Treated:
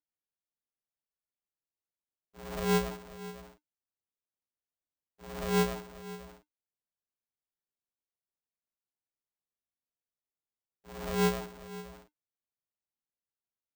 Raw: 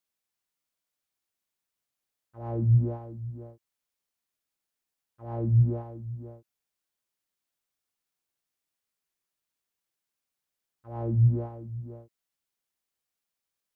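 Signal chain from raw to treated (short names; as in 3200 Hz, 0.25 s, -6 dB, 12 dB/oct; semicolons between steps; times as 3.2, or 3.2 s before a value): minimum comb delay 0.52 ms; LPF 1200 Hz 24 dB/oct; polarity switched at an audio rate 300 Hz; gain -6.5 dB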